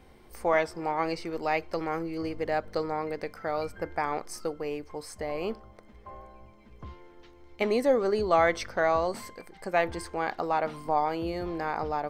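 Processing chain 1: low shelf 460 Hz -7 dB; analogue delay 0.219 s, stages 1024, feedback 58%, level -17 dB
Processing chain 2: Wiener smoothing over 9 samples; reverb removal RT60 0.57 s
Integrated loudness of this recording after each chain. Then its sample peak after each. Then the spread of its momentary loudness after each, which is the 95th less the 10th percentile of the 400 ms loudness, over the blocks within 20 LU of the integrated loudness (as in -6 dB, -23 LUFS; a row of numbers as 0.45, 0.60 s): -32.0, -30.5 LUFS; -12.0, -11.0 dBFS; 13, 17 LU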